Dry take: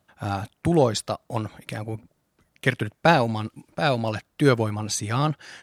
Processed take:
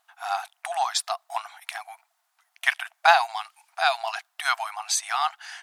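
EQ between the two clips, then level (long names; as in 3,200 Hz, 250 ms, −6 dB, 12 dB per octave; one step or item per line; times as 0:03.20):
linear-phase brick-wall high-pass 660 Hz
+3.0 dB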